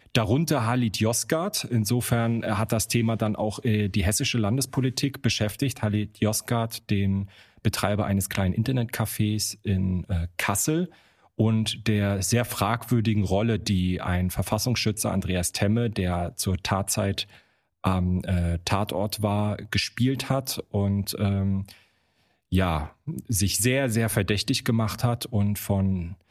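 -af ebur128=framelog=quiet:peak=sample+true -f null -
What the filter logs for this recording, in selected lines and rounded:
Integrated loudness:
  I:         -25.5 LUFS
  Threshold: -35.7 LUFS
Loudness range:
  LRA:         2.0 LU
  Threshold: -45.8 LUFS
  LRA low:   -26.8 LUFS
  LRA high:  -24.8 LUFS
Sample peak:
  Peak:       -7.8 dBFS
True peak:
  Peak:       -7.8 dBFS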